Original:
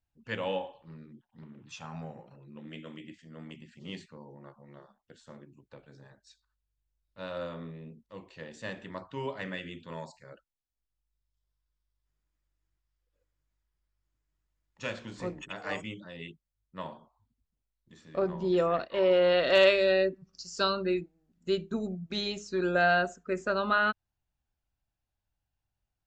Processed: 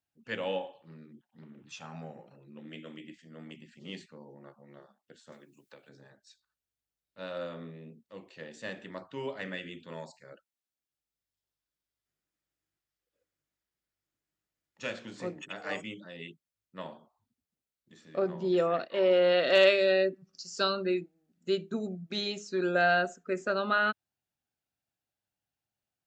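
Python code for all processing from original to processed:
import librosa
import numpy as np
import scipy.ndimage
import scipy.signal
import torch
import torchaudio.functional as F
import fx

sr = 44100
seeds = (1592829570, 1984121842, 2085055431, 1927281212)

y = fx.chain(x, sr, fx.tilt_eq(slope=2.5),
    fx.band_squash(depth_pct=70), at=(5.32, 5.89))
y = scipy.signal.sosfilt(scipy.signal.butter(2, 170.0, 'highpass', fs=sr, output='sos'), y)
y = fx.peak_eq(y, sr, hz=1000.0, db=-6.0, octaves=0.35)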